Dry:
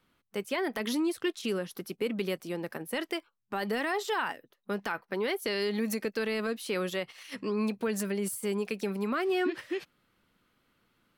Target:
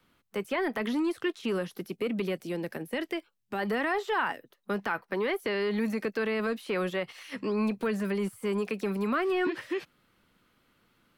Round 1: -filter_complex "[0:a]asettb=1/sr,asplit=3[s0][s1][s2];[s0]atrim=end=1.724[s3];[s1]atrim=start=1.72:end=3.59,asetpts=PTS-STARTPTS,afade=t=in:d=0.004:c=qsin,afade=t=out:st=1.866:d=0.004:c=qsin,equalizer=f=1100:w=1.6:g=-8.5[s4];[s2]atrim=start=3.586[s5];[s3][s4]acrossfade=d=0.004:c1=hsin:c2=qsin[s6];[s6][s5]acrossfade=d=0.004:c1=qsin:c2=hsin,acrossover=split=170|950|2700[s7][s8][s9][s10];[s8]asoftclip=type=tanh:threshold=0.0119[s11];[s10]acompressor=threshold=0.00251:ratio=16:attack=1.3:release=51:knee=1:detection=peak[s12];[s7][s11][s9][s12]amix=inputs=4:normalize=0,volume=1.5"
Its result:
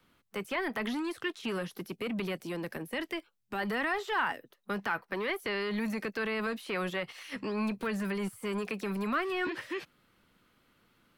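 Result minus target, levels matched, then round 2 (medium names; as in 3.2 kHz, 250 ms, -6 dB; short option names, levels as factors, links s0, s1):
saturation: distortion +9 dB
-filter_complex "[0:a]asettb=1/sr,asplit=3[s0][s1][s2];[s0]atrim=end=1.724[s3];[s1]atrim=start=1.72:end=3.59,asetpts=PTS-STARTPTS,afade=t=in:d=0.004:c=qsin,afade=t=out:st=1.866:d=0.004:c=qsin,equalizer=f=1100:w=1.6:g=-8.5[s4];[s2]atrim=start=3.586[s5];[s3][s4]acrossfade=d=0.004:c1=hsin:c2=qsin[s6];[s6][s5]acrossfade=d=0.004:c1=qsin:c2=hsin,acrossover=split=170|950|2700[s7][s8][s9][s10];[s8]asoftclip=type=tanh:threshold=0.0376[s11];[s10]acompressor=threshold=0.00251:ratio=16:attack=1.3:release=51:knee=1:detection=peak[s12];[s7][s11][s9][s12]amix=inputs=4:normalize=0,volume=1.5"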